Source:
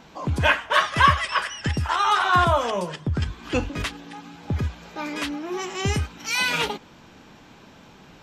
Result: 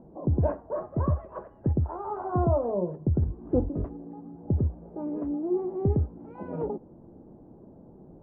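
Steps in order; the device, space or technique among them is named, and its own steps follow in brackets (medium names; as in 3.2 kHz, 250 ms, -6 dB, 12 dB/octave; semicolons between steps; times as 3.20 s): under water (low-pass 640 Hz 24 dB/octave; peaking EQ 350 Hz +5 dB 0.24 oct); 0.56–1.12 s: peaking EQ 3.7 kHz -6 dB 2.9 oct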